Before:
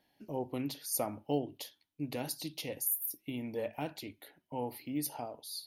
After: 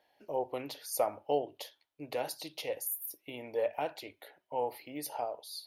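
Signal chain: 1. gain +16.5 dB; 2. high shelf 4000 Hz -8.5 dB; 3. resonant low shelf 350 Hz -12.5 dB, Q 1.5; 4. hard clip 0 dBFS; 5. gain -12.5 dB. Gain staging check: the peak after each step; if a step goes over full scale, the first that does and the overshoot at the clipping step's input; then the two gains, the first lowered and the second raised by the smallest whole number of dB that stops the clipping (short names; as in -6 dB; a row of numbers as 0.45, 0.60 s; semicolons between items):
-1.5, -3.5, -5.0, -5.0, -17.5 dBFS; no overload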